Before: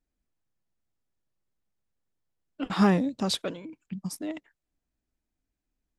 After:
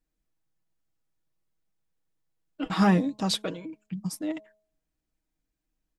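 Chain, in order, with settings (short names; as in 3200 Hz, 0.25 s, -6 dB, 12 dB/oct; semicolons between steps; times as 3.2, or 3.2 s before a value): comb 6.3 ms, depth 50%; de-hum 211.9 Hz, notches 5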